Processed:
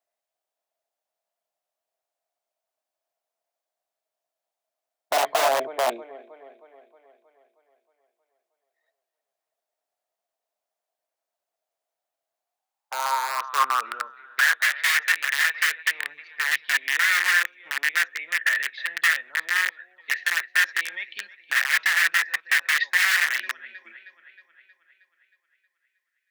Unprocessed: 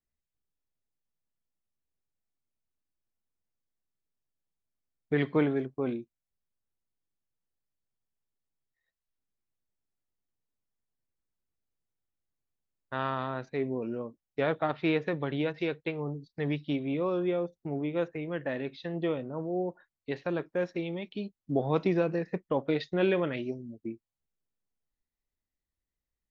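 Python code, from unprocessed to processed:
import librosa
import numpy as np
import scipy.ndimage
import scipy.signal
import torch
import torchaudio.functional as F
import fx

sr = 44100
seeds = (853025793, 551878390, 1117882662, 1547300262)

y = fx.echo_thinned(x, sr, ms=315, feedback_pct=59, hz=180.0, wet_db=-18)
y = (np.mod(10.0 ** (25.5 / 20.0) * y + 1.0, 2.0) - 1.0) / 10.0 ** (25.5 / 20.0)
y = fx.filter_sweep_highpass(y, sr, from_hz=660.0, to_hz=1800.0, start_s=12.33, end_s=14.73, q=7.7)
y = y * librosa.db_to_amplitude(5.0)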